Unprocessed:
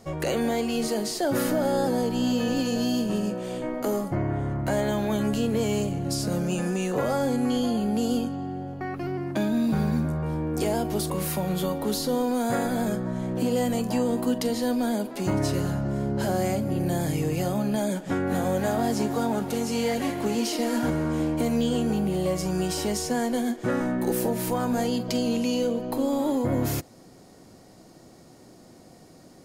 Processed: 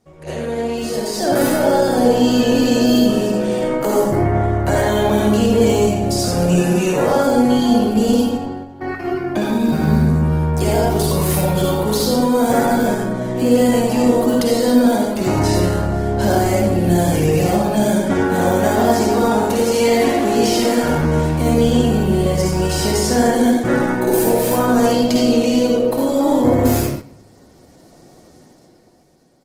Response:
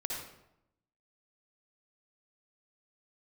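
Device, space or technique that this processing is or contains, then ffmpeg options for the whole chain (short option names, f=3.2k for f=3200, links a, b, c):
speakerphone in a meeting room: -filter_complex "[1:a]atrim=start_sample=2205[a];[0:a][a]afir=irnorm=-1:irlink=0,asplit=2[b][c];[c]adelay=140,highpass=300,lowpass=3.4k,asoftclip=type=hard:threshold=-17.5dB,volume=-30dB[d];[b][d]amix=inputs=2:normalize=0,dynaudnorm=f=110:g=21:m=15dB,agate=range=-8dB:threshold=-24dB:ratio=16:detection=peak,volume=-1.5dB" -ar 48000 -c:a libopus -b:a 16k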